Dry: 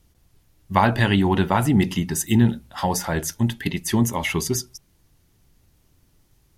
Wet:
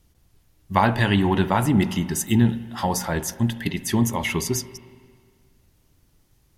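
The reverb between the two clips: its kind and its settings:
spring reverb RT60 1.9 s, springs 39/59 ms, chirp 70 ms, DRR 14 dB
level −1 dB

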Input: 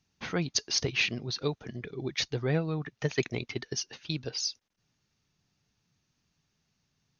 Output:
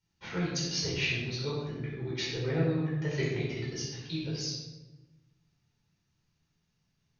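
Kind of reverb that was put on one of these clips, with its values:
rectangular room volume 570 cubic metres, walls mixed, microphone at 4.6 metres
level −12.5 dB

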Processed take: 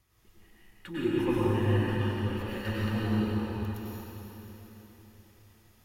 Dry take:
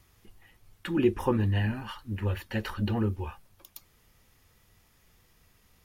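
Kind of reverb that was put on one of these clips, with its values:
dense smooth reverb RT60 4 s, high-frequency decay 1×, pre-delay 85 ms, DRR −9 dB
level −9 dB

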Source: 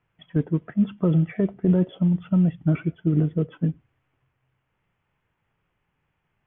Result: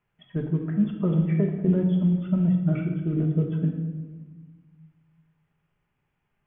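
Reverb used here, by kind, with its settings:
rectangular room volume 1,000 cubic metres, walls mixed, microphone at 1.3 metres
level −5 dB

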